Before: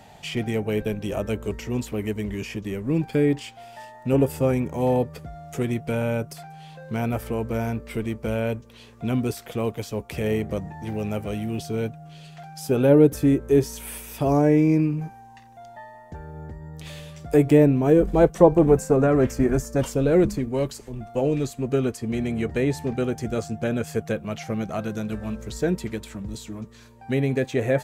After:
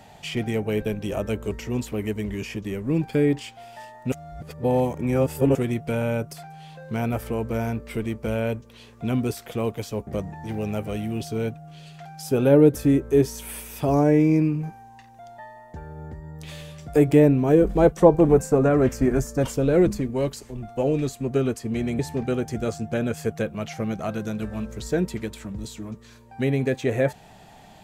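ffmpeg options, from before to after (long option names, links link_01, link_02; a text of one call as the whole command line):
ffmpeg -i in.wav -filter_complex "[0:a]asplit=5[link_01][link_02][link_03][link_04][link_05];[link_01]atrim=end=4.122[link_06];[link_02]atrim=start=4.118:end=5.552,asetpts=PTS-STARTPTS,areverse[link_07];[link_03]atrim=start=5.548:end=10.072[link_08];[link_04]atrim=start=10.448:end=22.372[link_09];[link_05]atrim=start=22.688[link_10];[link_06][link_07]acrossfade=duration=0.004:curve1=hsin:curve2=hsin[link_11];[link_11][link_08]acrossfade=duration=0.004:curve1=hsin:curve2=hsin[link_12];[link_12][link_09]acrossfade=duration=0.004:curve1=hsin:curve2=hsin[link_13];[link_13][link_10]acrossfade=duration=0.004:curve1=hsin:curve2=hsin" out.wav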